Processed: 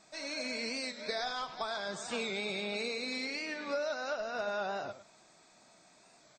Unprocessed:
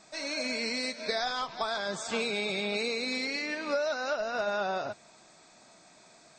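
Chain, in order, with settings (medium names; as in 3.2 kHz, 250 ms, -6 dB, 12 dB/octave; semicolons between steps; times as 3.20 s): delay 101 ms -13 dB; warped record 45 rpm, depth 100 cents; trim -5 dB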